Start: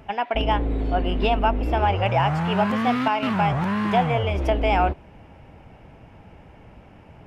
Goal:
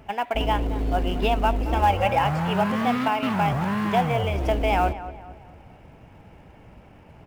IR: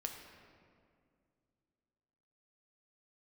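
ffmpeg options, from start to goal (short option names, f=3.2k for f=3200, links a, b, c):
-filter_complex "[0:a]asettb=1/sr,asplit=3[a][b][c];[a]atrim=end=1.724[d];[b]atrim=start=1.72:end=2.25,asetpts=PTS-STARTPTS,afade=t=in:d=0.004:c=qsin,afade=t=out:st=0.526:d=0.004:c=qsin,aecho=1:1:3.7:0.64,atrim=end_sample=23373[e];[c]atrim=start=2.246[f];[d][e]acrossfade=d=0.004:c1=hsin:c2=qsin[g];[g][f]acrossfade=d=0.004:c1=qsin:c2=hsin,asplit=2[h][i];[i]acrusher=bits=3:mode=log:mix=0:aa=0.000001,volume=-10dB[j];[h][j]amix=inputs=2:normalize=0,asplit=2[k][l];[l]adelay=224,lowpass=f=2.3k:p=1,volume=-14dB,asplit=2[m][n];[n]adelay=224,lowpass=f=2.3k:p=1,volume=0.43,asplit=2[o][p];[p]adelay=224,lowpass=f=2.3k:p=1,volume=0.43,asplit=2[q][r];[r]adelay=224,lowpass=f=2.3k:p=1,volume=0.43[s];[k][m][o][q][s]amix=inputs=5:normalize=0,volume=-4dB"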